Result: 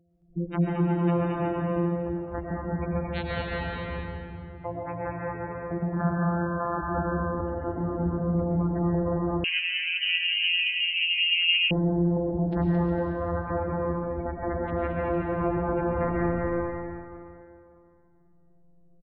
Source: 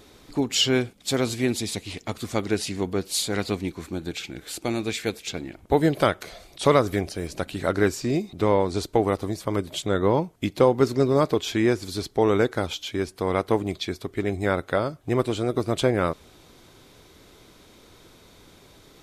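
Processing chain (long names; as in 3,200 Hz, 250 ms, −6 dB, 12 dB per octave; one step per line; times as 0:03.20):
samples sorted by size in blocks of 256 samples
0:05.94–0:06.77: gain on a spectral selection 530–1,800 Hz +9 dB
noise reduction from a noise print of the clip's start 13 dB
gate on every frequency bin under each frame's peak −10 dB strong
reverb reduction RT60 1.2 s
dynamic equaliser 290 Hz, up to +5 dB, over −35 dBFS, Q 1.3
brickwall limiter −21.5 dBFS, peak gain reduction 21 dB
bouncing-ball delay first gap 220 ms, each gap 0.65×, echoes 5
convolution reverb RT60 2.5 s, pre-delay 70 ms, DRR −3 dB
0:09.44–0:11.71: voice inversion scrambler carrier 3,000 Hz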